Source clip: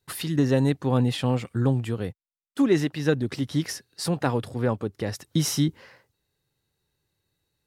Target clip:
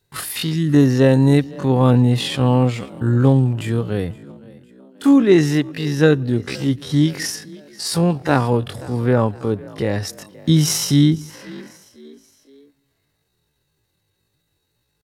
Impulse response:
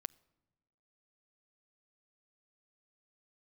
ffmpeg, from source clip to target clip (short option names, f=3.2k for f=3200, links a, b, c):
-filter_complex "[0:a]asplit=4[a][b][c][d];[b]adelay=263,afreqshift=42,volume=-21.5dB[e];[c]adelay=526,afreqshift=84,volume=-28.2dB[f];[d]adelay=789,afreqshift=126,volume=-35dB[g];[a][e][f][g]amix=inputs=4:normalize=0,asplit=2[h][i];[1:a]atrim=start_sample=2205,afade=t=out:st=0.4:d=0.01,atrim=end_sample=18081[j];[i][j]afir=irnorm=-1:irlink=0,volume=8dB[k];[h][k]amix=inputs=2:normalize=0,atempo=0.51,volume=-1dB"